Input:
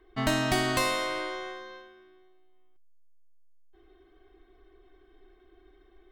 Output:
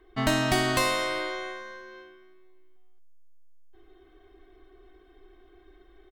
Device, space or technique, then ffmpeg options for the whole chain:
ducked delay: -filter_complex "[0:a]asplit=3[link_01][link_02][link_03];[link_02]adelay=223,volume=-4dB[link_04];[link_03]apad=whole_len=279298[link_05];[link_04][link_05]sidechaincompress=threshold=-45dB:ratio=8:attack=16:release=420[link_06];[link_01][link_06]amix=inputs=2:normalize=0,volume=2dB"

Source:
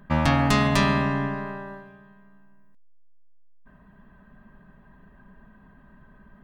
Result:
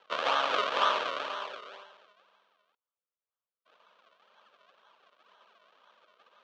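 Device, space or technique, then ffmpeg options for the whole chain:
circuit-bent sampling toy: -filter_complex "[0:a]highpass=55,acrusher=samples=36:mix=1:aa=0.000001:lfo=1:lforange=36:lforate=2,highpass=410,equalizer=frequency=500:width_type=q:width=4:gain=6,equalizer=frequency=760:width_type=q:width=4:gain=-6,equalizer=frequency=1200:width_type=q:width=4:gain=5,equalizer=frequency=2000:width_type=q:width=4:gain=-7,equalizer=frequency=3200:width_type=q:width=4:gain=4,equalizer=frequency=5000:width_type=q:width=4:gain=-5,lowpass=frequency=5400:width=0.5412,lowpass=frequency=5400:width=1.3066,acrossover=split=580 4900:gain=0.0708 1 0.251[link_01][link_02][link_03];[link_01][link_02][link_03]amix=inputs=3:normalize=0"

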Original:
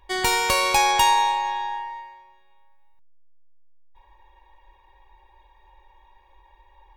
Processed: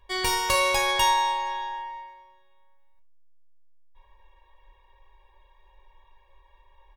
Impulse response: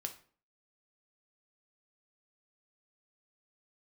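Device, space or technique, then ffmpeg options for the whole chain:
microphone above a desk: -filter_complex "[0:a]asettb=1/sr,asplit=3[link_01][link_02][link_03];[link_01]atrim=end=1.654[link_04];[link_02]atrim=start=1.65:end=2.08,asetpts=PTS-STARTPTS,afade=type=in:duration=0.004:curve=qsin,afade=type=out:start_time=0.426:duration=0.004:curve=qsin,lowpass=8100[link_05];[link_03]atrim=start=2.076[link_06];[link_04][link_05]acrossfade=duration=0.004:curve1=hsin:curve2=qsin[link_07];[link_07][link_06]acrossfade=duration=0.004:curve1=qsin:curve2=hsin,aecho=1:1:1.8:0.57[link_08];[1:a]atrim=start_sample=2205[link_09];[link_08][link_09]afir=irnorm=-1:irlink=0,volume=-3dB"

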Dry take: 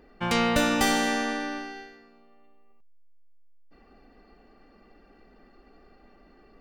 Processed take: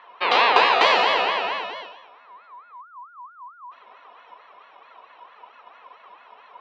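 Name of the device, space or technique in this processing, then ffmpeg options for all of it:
voice changer toy: -af "aeval=exprs='val(0)*sin(2*PI*1200*n/s+1200*0.2/4.5*sin(2*PI*4.5*n/s))':channel_layout=same,highpass=440,equalizer=frequency=450:width_type=q:width=4:gain=8,equalizer=frequency=690:width_type=q:width=4:gain=4,equalizer=frequency=1000:width_type=q:width=4:gain=8,equalizer=frequency=1500:width_type=q:width=4:gain=-6,equalizer=frequency=2600:width_type=q:width=4:gain=6,equalizer=frequency=4100:width_type=q:width=4:gain=5,lowpass=frequency=4200:width=0.5412,lowpass=frequency=4200:width=1.3066,volume=7dB"

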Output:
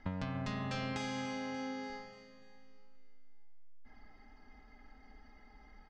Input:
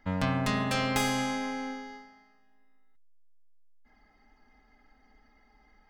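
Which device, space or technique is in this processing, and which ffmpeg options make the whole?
ASMR close-microphone chain: -filter_complex "[0:a]lowshelf=frequency=250:gain=4.5,acompressor=threshold=-38dB:ratio=6,lowpass=frequency=6400:width=0.5412,lowpass=frequency=6400:width=1.3066,highshelf=frequency=12000:gain=5,asettb=1/sr,asplit=3[link_01][link_02][link_03];[link_01]atrim=end=0.934[link_04];[link_02]atrim=start=0.93:end=1.9,asetpts=PTS-STARTPTS,afade=type=in:duration=0.004:curve=qsin,afade=type=out:start_time=0.966:duration=0.004:curve=qsin,highpass=77[link_05];[link_03]atrim=start=1.896[link_06];[link_04][link_05]acrossfade=duration=0.004:curve1=hsin:curve2=qsin[link_07];[link_07][link_06]acrossfade=duration=0.004:curve1=qsin:curve2=hsin,aecho=1:1:292|584|876|1168|1460:0.224|0.114|0.0582|0.0297|0.0151,volume=1.5dB"

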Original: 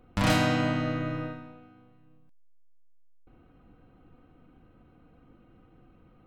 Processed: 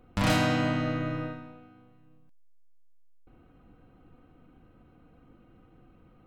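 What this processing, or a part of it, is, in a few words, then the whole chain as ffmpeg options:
parallel distortion: -filter_complex "[0:a]asplit=2[link_01][link_02];[link_02]asoftclip=type=hard:threshold=-23.5dB,volume=-7dB[link_03];[link_01][link_03]amix=inputs=2:normalize=0,volume=-3dB"

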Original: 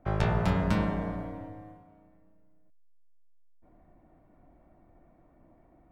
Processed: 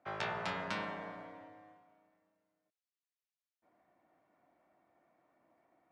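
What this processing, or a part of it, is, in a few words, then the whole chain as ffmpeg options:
piezo pickup straight into a mixer: -af "highpass=79,lowpass=frequency=1600:poles=1,lowpass=5600,aderivative,volume=13dB"

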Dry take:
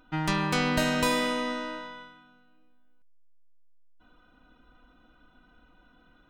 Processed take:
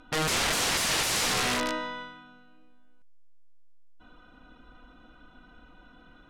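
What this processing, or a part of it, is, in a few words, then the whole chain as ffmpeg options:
overflowing digital effects unit: -af "aeval=exprs='(mod(22.4*val(0)+1,2)-1)/22.4':channel_layout=same,lowpass=9800,volume=6dB"

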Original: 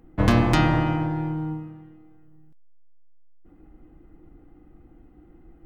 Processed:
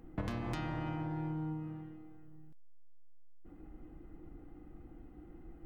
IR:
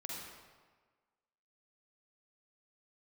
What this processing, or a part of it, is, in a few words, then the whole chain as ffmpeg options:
serial compression, leveller first: -af "acompressor=threshold=-22dB:ratio=2.5,acompressor=threshold=-34dB:ratio=6,volume=-1.5dB"

